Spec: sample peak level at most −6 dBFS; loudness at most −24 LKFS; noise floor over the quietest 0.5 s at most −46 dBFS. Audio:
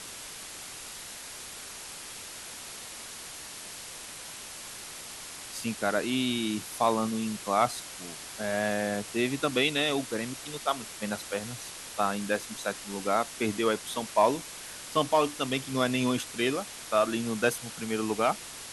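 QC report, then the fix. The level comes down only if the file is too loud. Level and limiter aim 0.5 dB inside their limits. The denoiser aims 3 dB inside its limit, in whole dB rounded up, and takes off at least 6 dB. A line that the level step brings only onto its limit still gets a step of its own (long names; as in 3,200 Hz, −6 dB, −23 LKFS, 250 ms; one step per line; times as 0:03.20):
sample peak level −10.5 dBFS: in spec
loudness −31.0 LKFS: in spec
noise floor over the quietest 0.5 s −43 dBFS: out of spec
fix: broadband denoise 6 dB, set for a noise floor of −43 dBFS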